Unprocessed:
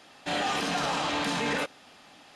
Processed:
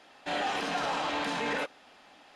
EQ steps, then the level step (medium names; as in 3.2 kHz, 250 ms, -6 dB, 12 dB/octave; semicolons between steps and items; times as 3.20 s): peaking EQ 120 Hz -9.5 dB 2.2 oct; treble shelf 3.7 kHz -9.5 dB; band-stop 1.2 kHz, Q 25; 0.0 dB